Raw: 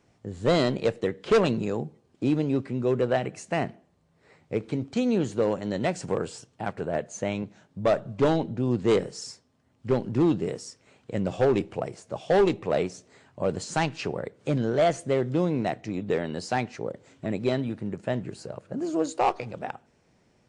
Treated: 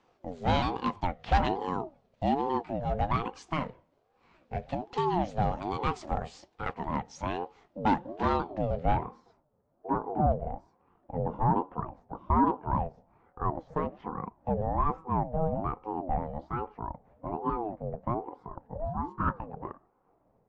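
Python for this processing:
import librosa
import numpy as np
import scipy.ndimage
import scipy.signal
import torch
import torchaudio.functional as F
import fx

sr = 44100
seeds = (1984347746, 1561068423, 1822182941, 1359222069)

y = fx.pitch_ramps(x, sr, semitones=-3.0, every_ms=311)
y = fx.filter_sweep_lowpass(y, sr, from_hz=4400.0, to_hz=760.0, start_s=8.6, end_s=9.22, q=0.83)
y = fx.ring_lfo(y, sr, carrier_hz=480.0, swing_pct=35, hz=1.2)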